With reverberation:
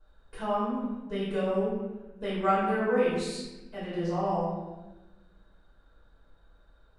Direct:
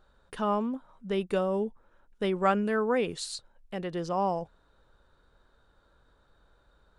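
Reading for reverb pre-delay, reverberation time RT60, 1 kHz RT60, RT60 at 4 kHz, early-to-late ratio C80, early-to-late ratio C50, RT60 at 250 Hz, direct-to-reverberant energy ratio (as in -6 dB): 4 ms, 1.2 s, 1.0 s, 0.80 s, 2.0 dB, -1.0 dB, 1.9 s, -12.0 dB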